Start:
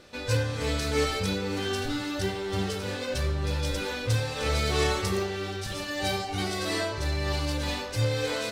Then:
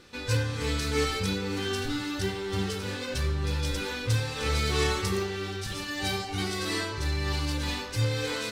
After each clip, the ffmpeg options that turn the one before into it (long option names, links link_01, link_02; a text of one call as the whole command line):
ffmpeg -i in.wav -af "equalizer=frequency=630:width=4:gain=-13" out.wav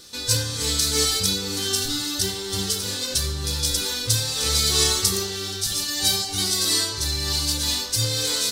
ffmpeg -i in.wav -af "aexciter=amount=6.9:drive=3.5:freq=3500" out.wav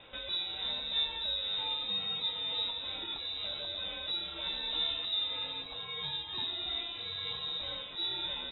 ffmpeg -i in.wav -filter_complex "[0:a]acrossover=split=480[link_01][link_02];[link_02]acompressor=threshold=-39dB:ratio=3[link_03];[link_01][link_03]amix=inputs=2:normalize=0,highpass=210,lowpass=frequency=3400:width_type=q:width=0.5098,lowpass=frequency=3400:width_type=q:width=0.6013,lowpass=frequency=3400:width_type=q:width=0.9,lowpass=frequency=3400:width_type=q:width=2.563,afreqshift=-4000" out.wav